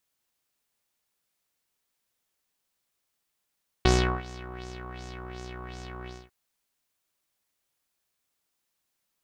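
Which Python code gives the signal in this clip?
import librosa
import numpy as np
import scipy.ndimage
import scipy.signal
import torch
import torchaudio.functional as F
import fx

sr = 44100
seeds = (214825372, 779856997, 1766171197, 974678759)

y = fx.sub_patch_wobble(sr, seeds[0], note=47, wave='saw', wave2='saw', interval_st=19, level2_db=0.0, sub_db=-2, noise_db=-30.0, kind='lowpass', cutoff_hz=2400.0, q=2.9, env_oct=0.5, env_decay_s=0.1, env_sustain_pct=40, attack_ms=1.1, decay_s=0.37, sustain_db=-21.0, release_s=0.23, note_s=2.22, lfo_hz=2.7, wobble_oct=1.3)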